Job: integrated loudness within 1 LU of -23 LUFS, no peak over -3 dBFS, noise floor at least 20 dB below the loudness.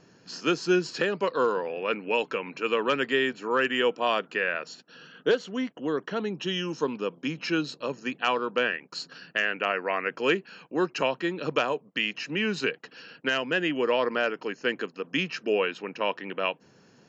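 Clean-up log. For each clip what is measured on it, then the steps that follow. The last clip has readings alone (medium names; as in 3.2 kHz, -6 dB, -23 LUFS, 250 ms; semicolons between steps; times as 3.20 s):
loudness -28.0 LUFS; peak level -13.0 dBFS; loudness target -23.0 LUFS
-> trim +5 dB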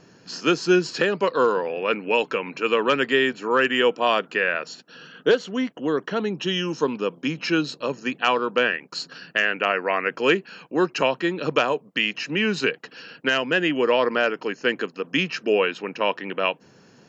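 loudness -23.0 LUFS; peak level -8.0 dBFS; noise floor -54 dBFS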